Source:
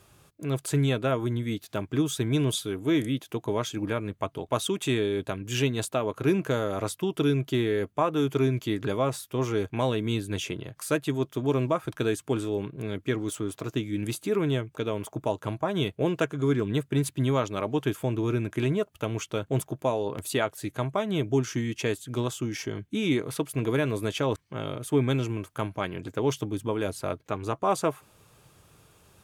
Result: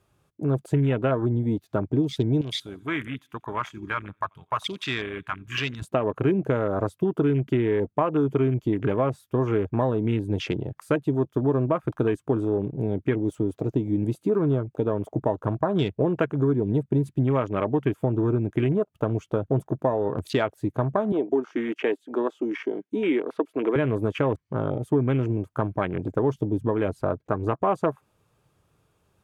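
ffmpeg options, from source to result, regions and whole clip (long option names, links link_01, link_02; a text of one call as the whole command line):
ffmpeg -i in.wav -filter_complex "[0:a]asettb=1/sr,asplit=3[link_01][link_02][link_03];[link_01]atrim=end=2.414[link_04];[link_02]atrim=start=2.41:end=5.82,asetpts=PTS-STARTPTS,afade=type=in:duration=0.004:curve=qsin,afade=type=out:start_time=3.406:duration=0.004:curve=qsin,lowshelf=frequency=800:width_type=q:width=1.5:gain=-13,aecho=1:1:87|174|261|348:0.075|0.039|0.0203|0.0105,atrim=end_sample=150381,asoftclip=type=hard:threshold=-23dB[link_05];[link_03]atrim=start=5.816[link_06];[link_04][link_05]acrossfade=duration=0.004:curve1=hsin:curve2=qsin[link_07];[link_07][link_06]acrossfade=duration=0.004:curve1=qsin:curve2=hsin,asettb=1/sr,asplit=3[link_08][link_09][link_10];[link_08]atrim=end=21.124[link_11];[link_09]atrim=start=21.12:end=23.76,asetpts=PTS-STARTPTS,afade=type=in:duration=0.004:curve=qsin,afade=type=out:start_time=2.636:duration=0.004:curve=qsin,acrossover=split=4300[link_12][link_13];[link_13]acompressor=threshold=-53dB:ratio=4:attack=1:release=60[link_14];[link_12][link_14]amix=inputs=2:normalize=0,highpass=frequency=280:width=0.5412,highpass=frequency=280:width=1.3066[link_15];[link_10]atrim=start=23.756[link_16];[link_11][link_15]acrossfade=duration=0.004:curve1=hsin:curve2=qsin[link_17];[link_17][link_16]acrossfade=duration=0.004:curve1=qsin:curve2=hsin,afwtdn=0.0141,highshelf=frequency=2500:gain=-8,acompressor=threshold=-29dB:ratio=3,volume=8.5dB" out.wav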